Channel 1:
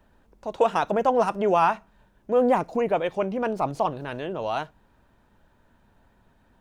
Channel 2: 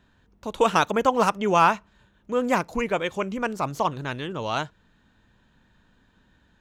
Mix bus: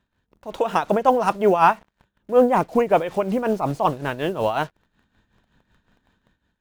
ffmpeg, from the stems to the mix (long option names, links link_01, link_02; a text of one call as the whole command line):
ffmpeg -i stem1.wav -i stem2.wav -filter_complex "[0:a]acrusher=bits=7:mix=0:aa=0.5,volume=-0.5dB,asplit=2[link_01][link_02];[1:a]alimiter=limit=-17dB:level=0:latency=1:release=356,volume=-8.5dB[link_03];[link_02]apad=whole_len=291497[link_04];[link_03][link_04]sidechaincompress=threshold=-33dB:ratio=3:attack=44:release=805[link_05];[link_01][link_05]amix=inputs=2:normalize=0,dynaudnorm=framelen=130:gausssize=7:maxgain=9dB,tremolo=f=5.4:d=0.69" out.wav